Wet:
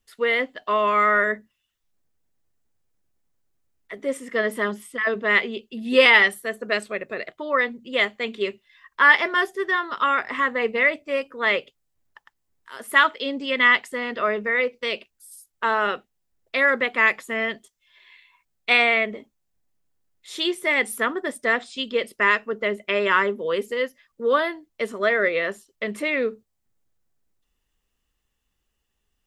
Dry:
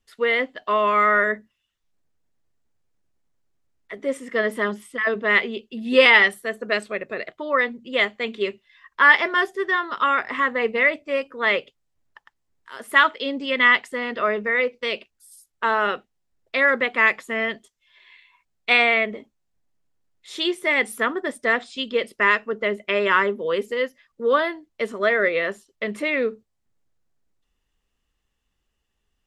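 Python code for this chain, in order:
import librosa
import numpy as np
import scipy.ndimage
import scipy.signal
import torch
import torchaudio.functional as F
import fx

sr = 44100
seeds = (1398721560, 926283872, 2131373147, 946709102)

y = fx.high_shelf(x, sr, hz=10000.0, db=10.0)
y = y * 10.0 ** (-1.0 / 20.0)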